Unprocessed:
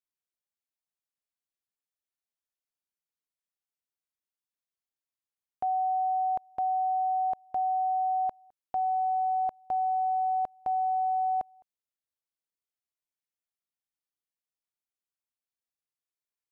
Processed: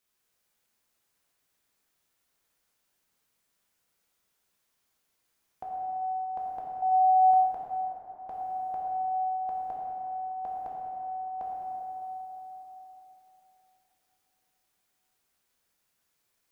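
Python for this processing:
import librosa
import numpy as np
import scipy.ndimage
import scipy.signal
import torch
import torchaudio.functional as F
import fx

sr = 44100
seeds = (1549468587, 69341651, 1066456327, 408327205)

y = fx.over_compress(x, sr, threshold_db=-36.0, ratio=-0.5)
y = fx.small_body(y, sr, hz=(300.0, 430.0, 710.0), ring_ms=30, db=14, at=(6.82, 7.31))
y = fx.rev_plate(y, sr, seeds[0], rt60_s=4.0, hf_ratio=0.5, predelay_ms=0, drr_db=-5.0)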